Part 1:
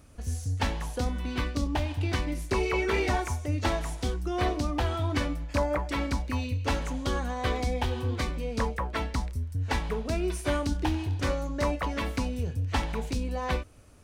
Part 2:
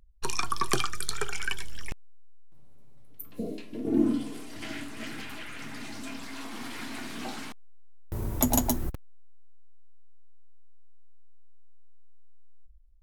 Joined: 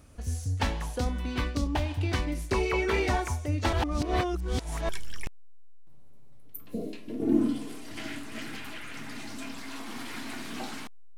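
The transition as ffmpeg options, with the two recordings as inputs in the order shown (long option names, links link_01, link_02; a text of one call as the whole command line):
ffmpeg -i cue0.wav -i cue1.wav -filter_complex "[0:a]apad=whole_dur=11.17,atrim=end=11.17,asplit=2[link_01][link_02];[link_01]atrim=end=3.732[link_03];[link_02]atrim=start=3.728:end=4.892,asetpts=PTS-STARTPTS,areverse[link_04];[1:a]atrim=start=1.538:end=7.82[link_05];[link_03][link_04]acrossfade=duration=0.004:curve1=hsin:curve2=hsin[link_06];[link_06][link_05]acrossfade=duration=0.004:curve1=hsin:curve2=hsin" out.wav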